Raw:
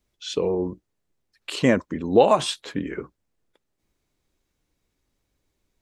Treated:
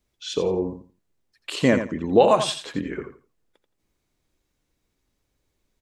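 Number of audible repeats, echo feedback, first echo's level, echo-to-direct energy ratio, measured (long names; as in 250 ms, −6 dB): 2, 20%, −9.0 dB, −9.0 dB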